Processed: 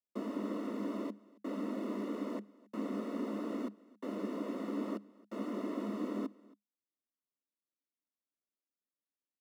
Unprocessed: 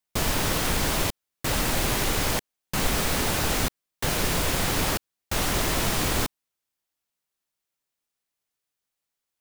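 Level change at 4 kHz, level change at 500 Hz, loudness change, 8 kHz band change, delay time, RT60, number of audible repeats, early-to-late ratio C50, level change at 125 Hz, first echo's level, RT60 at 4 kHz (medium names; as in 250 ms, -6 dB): -30.5 dB, -10.0 dB, -14.5 dB, under -35 dB, 273 ms, no reverb, 1, no reverb, under -20 dB, -23.0 dB, no reverb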